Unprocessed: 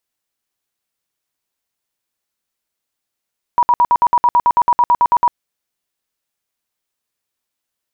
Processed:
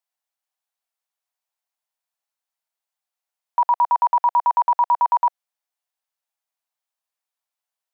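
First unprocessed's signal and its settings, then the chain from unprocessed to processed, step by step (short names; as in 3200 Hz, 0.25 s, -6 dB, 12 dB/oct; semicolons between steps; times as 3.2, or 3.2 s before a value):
tone bursts 964 Hz, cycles 47, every 0.11 s, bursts 16, -8 dBFS
ladder high-pass 610 Hz, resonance 45%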